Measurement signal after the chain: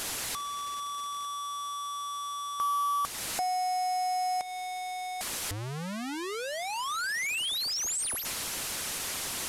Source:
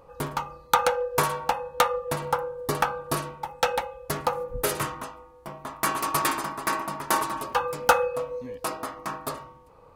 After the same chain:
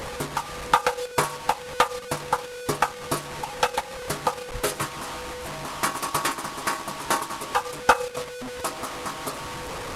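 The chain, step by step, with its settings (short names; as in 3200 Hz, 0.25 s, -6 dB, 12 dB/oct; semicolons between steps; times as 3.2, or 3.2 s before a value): delta modulation 64 kbps, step -26.5 dBFS; transient shaper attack +1 dB, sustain -6 dB; harmonic-percussive split percussive +5 dB; gain -3.5 dB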